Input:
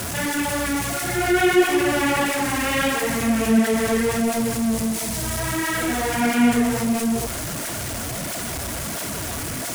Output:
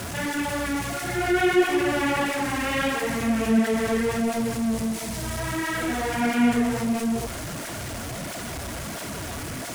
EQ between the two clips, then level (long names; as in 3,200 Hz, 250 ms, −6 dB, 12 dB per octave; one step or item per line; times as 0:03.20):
high-shelf EQ 6,800 Hz −8 dB
−3.0 dB